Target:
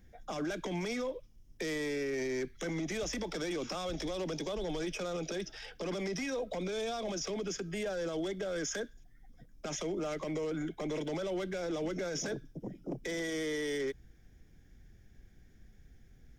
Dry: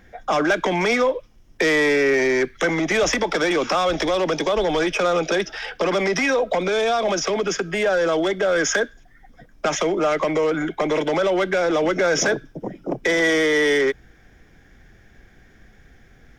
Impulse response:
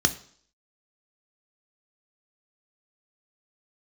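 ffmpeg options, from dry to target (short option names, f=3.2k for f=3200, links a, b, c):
-af "equalizer=f=1.2k:w=0.33:g=-14.5,alimiter=limit=-23dB:level=0:latency=1:release=27,volume=-5.5dB"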